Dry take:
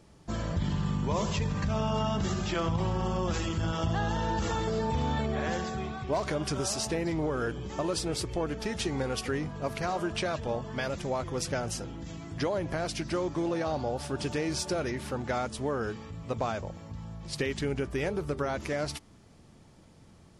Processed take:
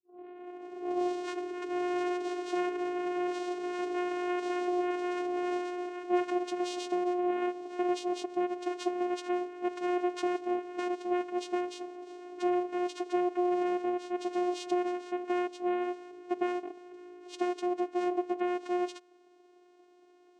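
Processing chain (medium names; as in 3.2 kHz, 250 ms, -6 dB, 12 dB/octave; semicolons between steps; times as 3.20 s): tape start-up on the opening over 1.76 s; vocoder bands 4, saw 357 Hz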